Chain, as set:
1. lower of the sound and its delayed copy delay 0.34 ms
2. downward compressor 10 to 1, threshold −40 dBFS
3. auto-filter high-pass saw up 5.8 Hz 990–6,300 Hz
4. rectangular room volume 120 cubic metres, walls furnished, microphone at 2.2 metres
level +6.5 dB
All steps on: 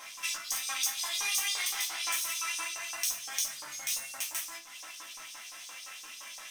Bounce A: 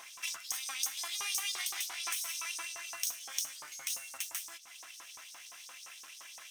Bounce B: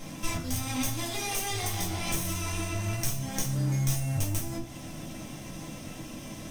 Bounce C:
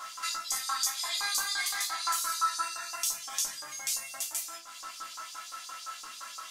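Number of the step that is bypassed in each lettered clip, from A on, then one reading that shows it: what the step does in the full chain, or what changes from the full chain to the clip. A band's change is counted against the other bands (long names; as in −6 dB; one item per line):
4, echo-to-direct ratio 3.5 dB to none audible
3, 250 Hz band +32.0 dB
1, 1 kHz band +8.5 dB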